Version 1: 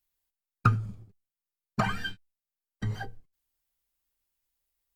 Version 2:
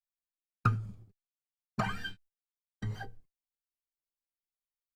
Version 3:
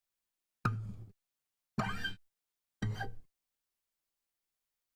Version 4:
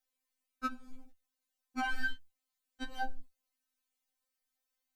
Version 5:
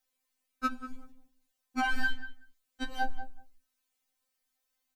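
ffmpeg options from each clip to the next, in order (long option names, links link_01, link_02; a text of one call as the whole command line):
ffmpeg -i in.wav -af "agate=range=-16dB:threshold=-54dB:ratio=16:detection=peak,volume=-5dB" out.wav
ffmpeg -i in.wav -af "acompressor=threshold=-40dB:ratio=3,volume=6dB" out.wav
ffmpeg -i in.wav -af "afftfilt=real='re*3.46*eq(mod(b,12),0)':imag='im*3.46*eq(mod(b,12),0)':win_size=2048:overlap=0.75,volume=3.5dB" out.wav
ffmpeg -i in.wav -filter_complex "[0:a]asplit=2[link_01][link_02];[link_02]adelay=189,lowpass=frequency=1700:poles=1,volume=-11.5dB,asplit=2[link_03][link_04];[link_04]adelay=189,lowpass=frequency=1700:poles=1,volume=0.15[link_05];[link_01][link_03][link_05]amix=inputs=3:normalize=0,volume=5dB" out.wav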